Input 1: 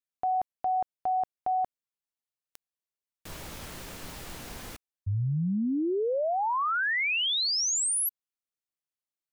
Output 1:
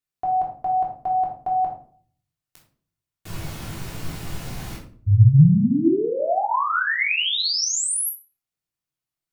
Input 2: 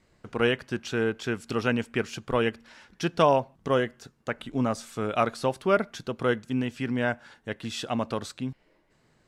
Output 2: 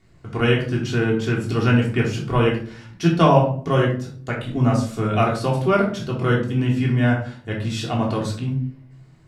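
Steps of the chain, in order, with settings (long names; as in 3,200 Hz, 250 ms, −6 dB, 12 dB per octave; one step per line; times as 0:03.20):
parametric band 120 Hz +9 dB 1.1 octaves
rectangular room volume 510 cubic metres, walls furnished, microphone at 3.3 metres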